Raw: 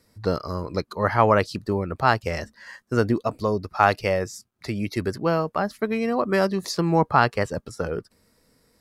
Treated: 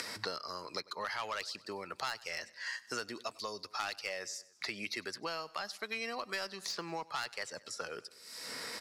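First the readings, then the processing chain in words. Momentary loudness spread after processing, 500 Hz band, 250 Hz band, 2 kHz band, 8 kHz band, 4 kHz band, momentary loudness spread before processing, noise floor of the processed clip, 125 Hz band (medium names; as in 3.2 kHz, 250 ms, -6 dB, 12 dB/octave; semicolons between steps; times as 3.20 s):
5 LU, -20.0 dB, -23.5 dB, -10.5 dB, -3.0 dB, -2.5 dB, 11 LU, -62 dBFS, -30.0 dB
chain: upward compressor, threshold -36 dBFS; band-pass filter 4.9 kHz, Q 0.91; saturation -26 dBFS, distortion -10 dB; feedback delay 96 ms, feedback 46%, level -23 dB; three bands compressed up and down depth 100%; trim -1 dB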